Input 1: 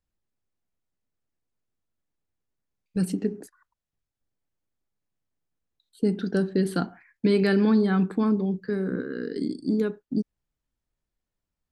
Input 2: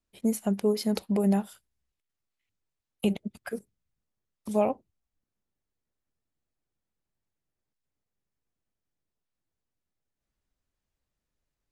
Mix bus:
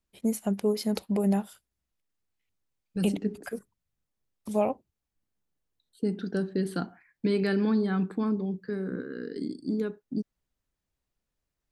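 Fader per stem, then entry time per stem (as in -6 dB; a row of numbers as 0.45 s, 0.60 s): -5.0 dB, -1.0 dB; 0.00 s, 0.00 s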